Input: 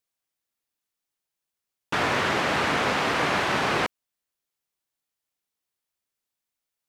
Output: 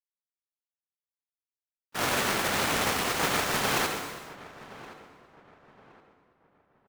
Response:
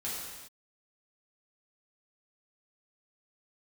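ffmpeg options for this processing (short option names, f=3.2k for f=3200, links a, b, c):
-filter_complex "[0:a]acrusher=bits=3:mix=0:aa=0.000001,agate=range=-46dB:threshold=-20dB:ratio=16:detection=peak,asplit=2[a][b];[b]adelay=1070,lowpass=f=1.8k:p=1,volume=-16.5dB,asplit=2[c][d];[d]adelay=1070,lowpass=f=1.8k:p=1,volume=0.35,asplit=2[e][f];[f]adelay=1070,lowpass=f=1.8k:p=1,volume=0.35[g];[a][c][e][g]amix=inputs=4:normalize=0,asplit=2[h][i];[1:a]atrim=start_sample=2205,adelay=69[j];[i][j]afir=irnorm=-1:irlink=0,volume=-7.5dB[k];[h][k]amix=inputs=2:normalize=0,volume=3dB"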